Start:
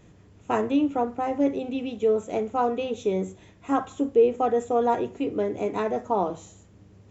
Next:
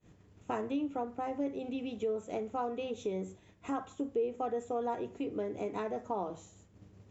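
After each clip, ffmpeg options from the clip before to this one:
-af "acompressor=threshold=-41dB:ratio=2,agate=range=-33dB:threshold=-46dB:ratio=3:detection=peak"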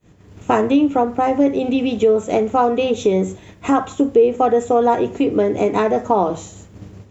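-af "dynaudnorm=f=170:g=3:m=11dB,volume=8.5dB"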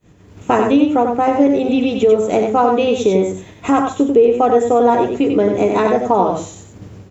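-af "aecho=1:1:93:0.562,volume=1.5dB"

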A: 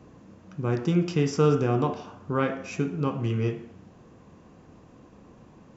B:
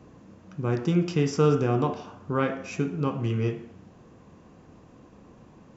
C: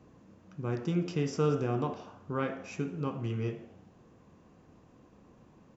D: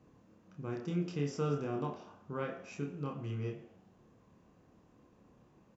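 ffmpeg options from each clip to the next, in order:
-af anull
-filter_complex "[0:a]asplit=5[a][b][c][d][e];[b]adelay=84,afreqshift=100,volume=-22dB[f];[c]adelay=168,afreqshift=200,volume=-27.4dB[g];[d]adelay=252,afreqshift=300,volume=-32.7dB[h];[e]adelay=336,afreqshift=400,volume=-38.1dB[i];[a][f][g][h][i]amix=inputs=5:normalize=0,volume=-7dB"
-filter_complex "[0:a]asplit=2[a][b];[b]adelay=28,volume=-4.5dB[c];[a][c]amix=inputs=2:normalize=0,volume=-6.5dB"

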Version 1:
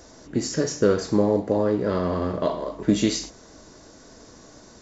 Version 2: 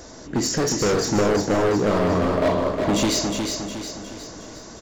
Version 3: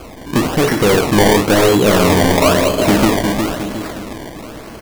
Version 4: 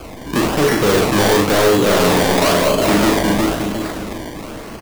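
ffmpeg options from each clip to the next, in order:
-filter_complex "[0:a]volume=24.5dB,asoftclip=hard,volume=-24.5dB,asplit=2[a][b];[b]aecho=0:1:360|720|1080|1440|1800|2160:0.562|0.27|0.13|0.0622|0.0299|0.0143[c];[a][c]amix=inputs=2:normalize=0,volume=6.5dB"
-af "highshelf=f=6.6k:g=-9,acrusher=samples=23:mix=1:aa=0.000001:lfo=1:lforange=23:lforate=1,volume=8.5dB"
-filter_complex "[0:a]acrossover=split=260|1500|6400[a][b][c][d];[a]alimiter=limit=-16.5dB:level=0:latency=1[e];[e][b][c][d]amix=inputs=4:normalize=0,asoftclip=type=hard:threshold=-11dB,asplit=2[f][g];[g]adelay=40,volume=-5dB[h];[f][h]amix=inputs=2:normalize=0"

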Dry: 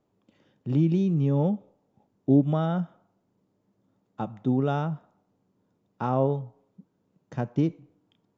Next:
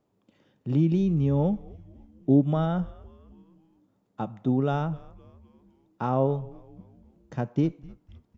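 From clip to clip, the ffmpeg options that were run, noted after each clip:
-filter_complex "[0:a]asplit=5[a][b][c][d][e];[b]adelay=255,afreqshift=-120,volume=-21.5dB[f];[c]adelay=510,afreqshift=-240,volume=-27dB[g];[d]adelay=765,afreqshift=-360,volume=-32.5dB[h];[e]adelay=1020,afreqshift=-480,volume=-38dB[i];[a][f][g][h][i]amix=inputs=5:normalize=0"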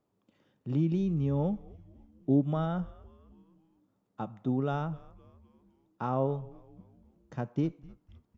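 -af "equalizer=f=1.2k:t=o:w=0.56:g=3,volume=-5.5dB"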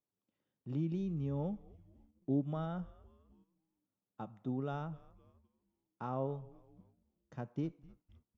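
-af "agate=range=-10dB:threshold=-57dB:ratio=16:detection=peak,volume=-8dB"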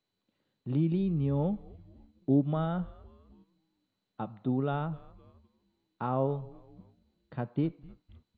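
-af "volume=8dB" -ar 16000 -c:a mp2 -b:a 48k

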